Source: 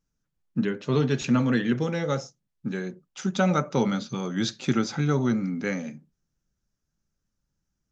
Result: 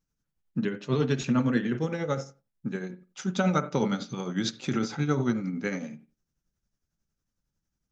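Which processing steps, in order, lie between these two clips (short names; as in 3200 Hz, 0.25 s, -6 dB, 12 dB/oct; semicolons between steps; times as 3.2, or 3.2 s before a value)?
1.27–2.87 bell 4000 Hz -4.5 dB 1.2 oct; on a send at -12.5 dB: reverb, pre-delay 44 ms; on the sum: tremolo triangle 11 Hz, depth 60%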